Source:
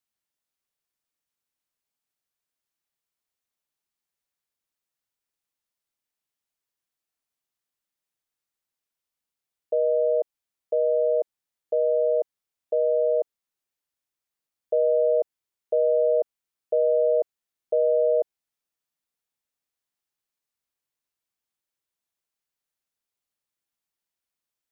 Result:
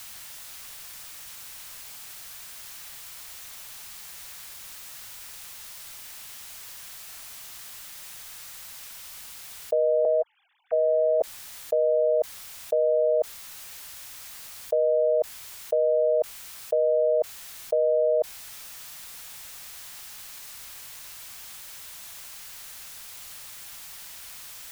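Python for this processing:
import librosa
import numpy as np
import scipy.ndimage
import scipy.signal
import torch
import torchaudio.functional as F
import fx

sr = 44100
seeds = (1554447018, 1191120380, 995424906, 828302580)

y = fx.sine_speech(x, sr, at=(10.05, 11.21))
y = fx.peak_eq(y, sr, hz=320.0, db=-11.5, octaves=1.9)
y = fx.env_flatten(y, sr, amount_pct=100)
y = y * 10.0 ** (5.5 / 20.0)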